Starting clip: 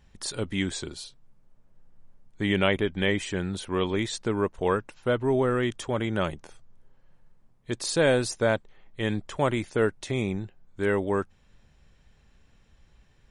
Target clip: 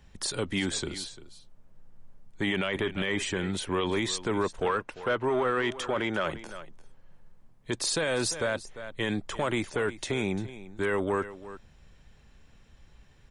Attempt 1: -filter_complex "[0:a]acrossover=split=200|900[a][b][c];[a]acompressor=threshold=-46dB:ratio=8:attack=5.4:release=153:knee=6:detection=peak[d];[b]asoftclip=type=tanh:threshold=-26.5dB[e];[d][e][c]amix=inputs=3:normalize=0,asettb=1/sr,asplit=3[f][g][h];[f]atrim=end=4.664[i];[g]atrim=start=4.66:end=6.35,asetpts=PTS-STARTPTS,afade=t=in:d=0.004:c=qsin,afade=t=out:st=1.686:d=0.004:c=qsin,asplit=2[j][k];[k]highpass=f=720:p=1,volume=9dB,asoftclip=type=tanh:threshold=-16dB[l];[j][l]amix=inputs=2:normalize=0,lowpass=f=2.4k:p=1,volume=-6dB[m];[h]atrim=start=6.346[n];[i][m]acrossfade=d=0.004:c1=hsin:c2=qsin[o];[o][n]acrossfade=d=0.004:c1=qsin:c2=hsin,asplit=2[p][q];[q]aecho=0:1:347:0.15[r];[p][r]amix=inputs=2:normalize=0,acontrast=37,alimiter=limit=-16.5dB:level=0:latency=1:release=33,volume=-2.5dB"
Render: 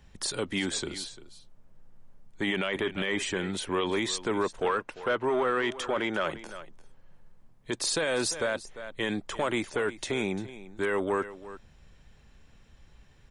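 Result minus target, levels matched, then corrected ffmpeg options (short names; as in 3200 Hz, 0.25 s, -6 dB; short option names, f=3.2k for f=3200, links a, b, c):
compressor: peak gain reduction +7.5 dB
-filter_complex "[0:a]acrossover=split=200|900[a][b][c];[a]acompressor=threshold=-37.5dB:ratio=8:attack=5.4:release=153:knee=6:detection=peak[d];[b]asoftclip=type=tanh:threshold=-26.5dB[e];[d][e][c]amix=inputs=3:normalize=0,asettb=1/sr,asplit=3[f][g][h];[f]atrim=end=4.664[i];[g]atrim=start=4.66:end=6.35,asetpts=PTS-STARTPTS,afade=t=in:d=0.004:c=qsin,afade=t=out:st=1.686:d=0.004:c=qsin,asplit=2[j][k];[k]highpass=f=720:p=1,volume=9dB,asoftclip=type=tanh:threshold=-16dB[l];[j][l]amix=inputs=2:normalize=0,lowpass=f=2.4k:p=1,volume=-6dB[m];[h]atrim=start=6.346[n];[i][m]acrossfade=d=0.004:c1=hsin:c2=qsin[o];[o][n]acrossfade=d=0.004:c1=qsin:c2=hsin,asplit=2[p][q];[q]aecho=0:1:347:0.15[r];[p][r]amix=inputs=2:normalize=0,acontrast=37,alimiter=limit=-16.5dB:level=0:latency=1:release=33,volume=-2.5dB"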